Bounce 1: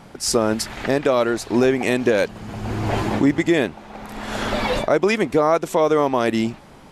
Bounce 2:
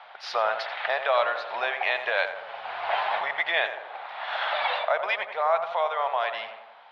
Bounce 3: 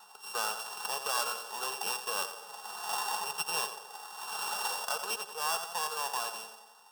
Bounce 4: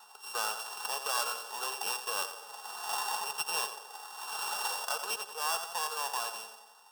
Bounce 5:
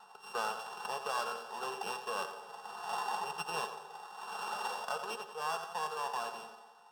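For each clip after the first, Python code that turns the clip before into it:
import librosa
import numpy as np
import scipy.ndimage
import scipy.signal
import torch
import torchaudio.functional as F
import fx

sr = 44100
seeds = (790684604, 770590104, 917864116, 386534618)

y1 = scipy.signal.sosfilt(scipy.signal.ellip(3, 1.0, 40, [680.0, 3700.0], 'bandpass', fs=sr, output='sos'), x)
y1 = fx.rider(y1, sr, range_db=5, speed_s=2.0)
y1 = fx.echo_tape(y1, sr, ms=88, feedback_pct=66, wet_db=-7.0, lp_hz=1700.0, drive_db=9.0, wow_cents=28)
y1 = y1 * 10.0 ** (-1.5 / 20.0)
y2 = np.r_[np.sort(y1[:len(y1) // 16 * 16].reshape(-1, 16), axis=1).ravel(), y1[len(y1) // 16 * 16:]]
y2 = fx.fixed_phaser(y2, sr, hz=420.0, stages=8)
y2 = y2 + 0.38 * np.pad(y2, (int(4.7 * sr / 1000.0), 0))[:len(y2)]
y2 = y2 * 10.0 ** (-4.5 / 20.0)
y3 = fx.highpass(y2, sr, hz=310.0, slope=6)
y4 = fx.rider(y3, sr, range_db=3, speed_s=2.0)
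y4 = fx.riaa(y4, sr, side='playback')
y4 = fx.comb_fb(y4, sr, f0_hz=78.0, decay_s=1.2, harmonics='all', damping=0.0, mix_pct=60)
y4 = y4 * 10.0 ** (6.0 / 20.0)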